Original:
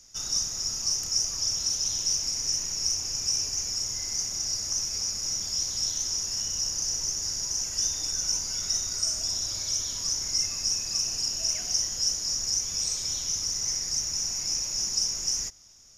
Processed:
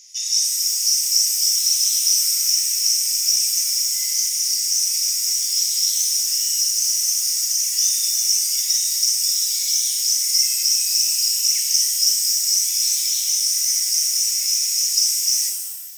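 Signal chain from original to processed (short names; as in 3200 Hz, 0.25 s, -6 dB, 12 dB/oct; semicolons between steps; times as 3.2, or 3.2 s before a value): steep high-pass 1900 Hz 96 dB/oct; shimmer reverb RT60 1 s, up +7 st, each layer -2 dB, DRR 4.5 dB; gain +7.5 dB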